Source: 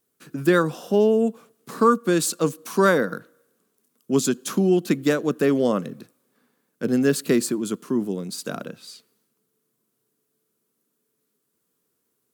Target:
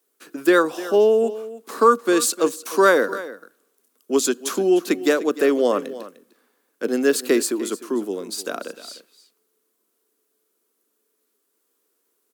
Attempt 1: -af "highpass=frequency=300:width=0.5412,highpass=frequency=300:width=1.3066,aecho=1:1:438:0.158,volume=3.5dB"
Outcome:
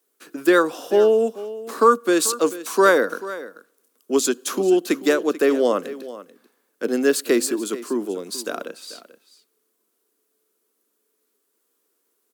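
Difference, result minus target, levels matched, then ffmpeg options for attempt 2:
echo 136 ms late
-af "highpass=frequency=300:width=0.5412,highpass=frequency=300:width=1.3066,aecho=1:1:302:0.158,volume=3.5dB"

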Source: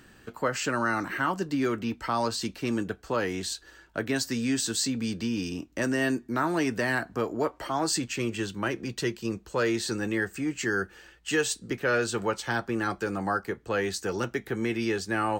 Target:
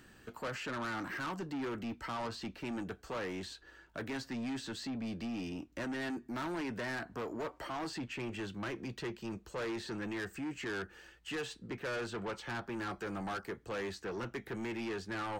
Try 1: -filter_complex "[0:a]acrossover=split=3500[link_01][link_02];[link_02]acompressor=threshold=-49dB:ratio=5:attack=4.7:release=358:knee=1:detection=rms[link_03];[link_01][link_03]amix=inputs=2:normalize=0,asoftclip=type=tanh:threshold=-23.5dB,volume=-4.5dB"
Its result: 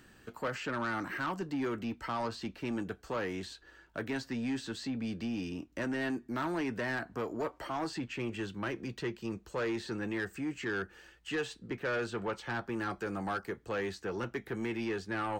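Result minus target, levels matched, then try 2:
soft clipping: distortion −6 dB
-filter_complex "[0:a]acrossover=split=3500[link_01][link_02];[link_02]acompressor=threshold=-49dB:ratio=5:attack=4.7:release=358:knee=1:detection=rms[link_03];[link_01][link_03]amix=inputs=2:normalize=0,asoftclip=type=tanh:threshold=-30.5dB,volume=-4.5dB"

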